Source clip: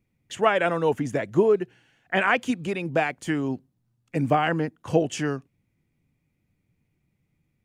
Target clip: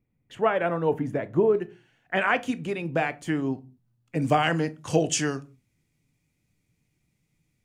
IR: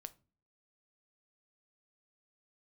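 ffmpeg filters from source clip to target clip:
-filter_complex "[0:a]asetnsamples=n=441:p=0,asendcmd='1.55 equalizer g -2.5;4.22 equalizer g 12',equalizer=f=6900:w=0.5:g=-14.5[s0];[1:a]atrim=start_sample=2205,afade=t=out:st=0.28:d=0.01,atrim=end_sample=12789[s1];[s0][s1]afir=irnorm=-1:irlink=0,volume=1.58"

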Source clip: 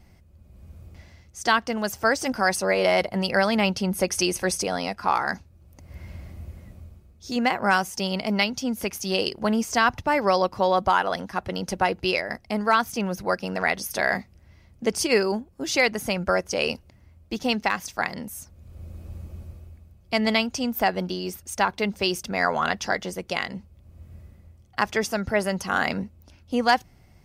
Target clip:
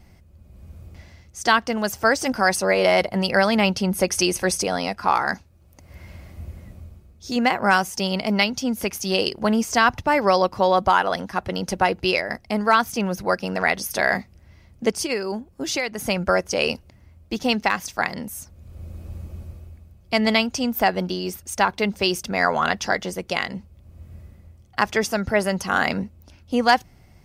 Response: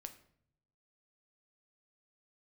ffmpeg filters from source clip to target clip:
-filter_complex "[0:a]asettb=1/sr,asplit=3[s0][s1][s2];[s0]atrim=end=5.344[s3];[s1]atrim=start=5.34:end=6.38,asetpts=PTS-STARTPTS,afade=t=in:d=0.004:c=qsin,afade=t=out:st=1.036:d=0.004:c=qsin,lowshelf=f=350:g=-5.5[s4];[s2]atrim=start=6.376[s5];[s3][s4]acrossfade=d=0.004:c1=hsin:c2=qsin[s6];[s6][s5]acrossfade=d=0.004:c1=qsin:c2=hsin,asplit=3[s7][s8][s9];[s7]afade=t=out:st=14.9:d=0.02[s10];[s8]acompressor=threshold=0.0501:ratio=4,afade=t=in:st=14.9:d=0.02,afade=t=out:st=15.98:d=0.02[s11];[s9]afade=t=in:st=15.98:d=0.02[s12];[s10][s11][s12]amix=inputs=3:normalize=0,volume=1.41"

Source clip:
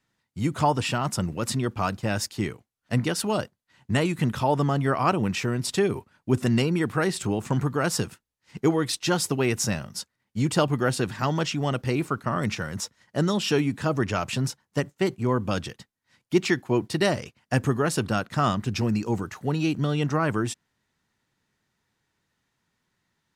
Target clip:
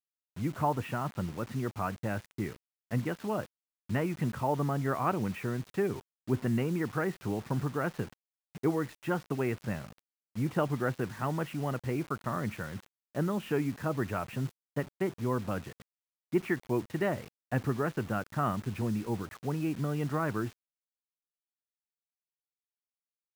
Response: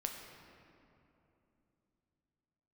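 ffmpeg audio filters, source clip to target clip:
-af "lowpass=f=2200:w=0.5412,lowpass=f=2200:w=1.3066,acrusher=bits=6:mix=0:aa=0.000001,volume=0.447"

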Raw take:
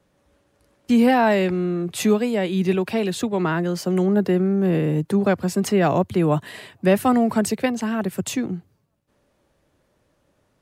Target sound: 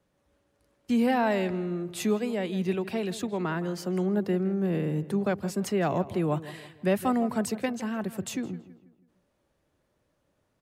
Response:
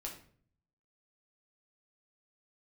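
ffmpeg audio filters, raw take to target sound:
-filter_complex "[0:a]asplit=2[s0][s1];[s1]adelay=163,lowpass=f=2700:p=1,volume=0.178,asplit=2[s2][s3];[s3]adelay=163,lowpass=f=2700:p=1,volume=0.43,asplit=2[s4][s5];[s5]adelay=163,lowpass=f=2700:p=1,volume=0.43,asplit=2[s6][s7];[s7]adelay=163,lowpass=f=2700:p=1,volume=0.43[s8];[s0][s2][s4][s6][s8]amix=inputs=5:normalize=0,volume=0.398"

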